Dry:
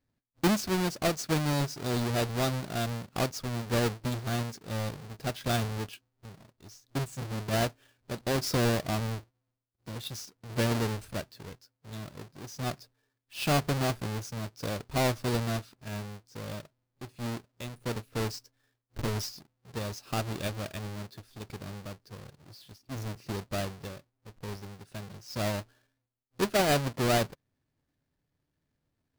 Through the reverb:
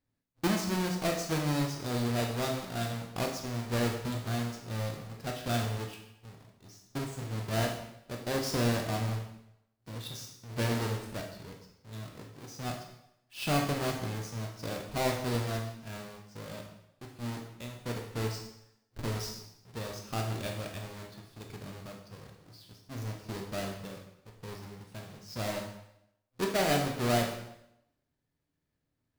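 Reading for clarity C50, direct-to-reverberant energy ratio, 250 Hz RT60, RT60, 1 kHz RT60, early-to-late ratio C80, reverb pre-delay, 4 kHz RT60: 5.5 dB, 1.5 dB, 0.75 s, 0.80 s, 0.80 s, 8.5 dB, 14 ms, 0.75 s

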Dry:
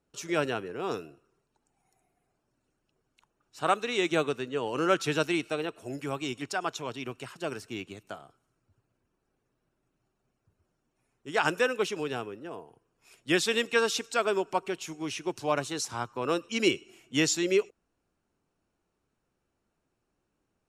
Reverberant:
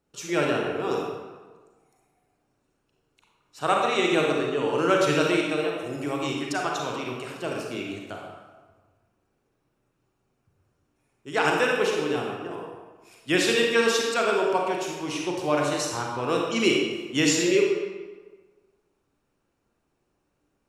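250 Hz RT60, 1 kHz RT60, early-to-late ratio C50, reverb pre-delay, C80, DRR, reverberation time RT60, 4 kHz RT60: 1.4 s, 1.4 s, 0.5 dB, 32 ms, 3.5 dB, -1.0 dB, 1.4 s, 0.95 s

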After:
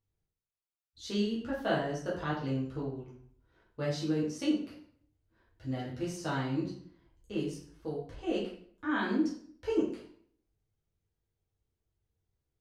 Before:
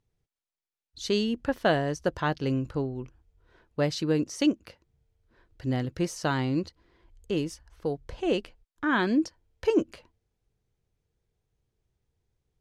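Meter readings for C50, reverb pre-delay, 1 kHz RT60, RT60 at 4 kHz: 4.5 dB, 5 ms, 0.55 s, 0.45 s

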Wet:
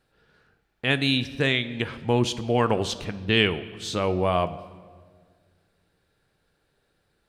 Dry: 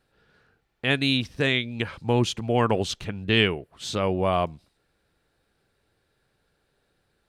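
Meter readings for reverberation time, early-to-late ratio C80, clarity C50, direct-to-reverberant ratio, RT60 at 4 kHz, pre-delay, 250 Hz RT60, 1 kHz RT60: 1.8 s, 16.5 dB, 14.5 dB, 11.5 dB, 1.2 s, 6 ms, 2.3 s, 1.6 s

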